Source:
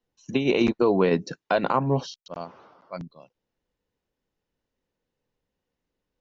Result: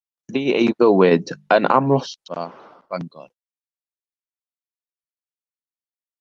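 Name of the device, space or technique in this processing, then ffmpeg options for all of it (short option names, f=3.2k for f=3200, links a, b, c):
video call: -filter_complex "[0:a]asettb=1/sr,asplit=3[a][b][c];[a]atrim=end=1.104[d];[b]atrim=start=1.1:end=1.96,asetpts=PTS-STARTPTS,afade=t=in:d=0.004:c=qsin,afade=t=out:st=0.856:d=0.004:c=qsin,bandreject=f=50:t=h:w=6,bandreject=f=100:t=h:w=6,bandreject=f=150:t=h:w=6,bandreject=f=200:t=h:w=6[e];[c]atrim=start=1.956[f];[d][e]acrossfade=d=0.004:c1=hsin:c2=qsin[g];[g][f]acrossfade=d=0.004:c1=qsin:c2=hsin,highpass=160,dynaudnorm=f=470:g=3:m=7.5dB,agate=range=-49dB:threshold=-48dB:ratio=16:detection=peak,volume=2dB" -ar 48000 -c:a libopus -b:a 32k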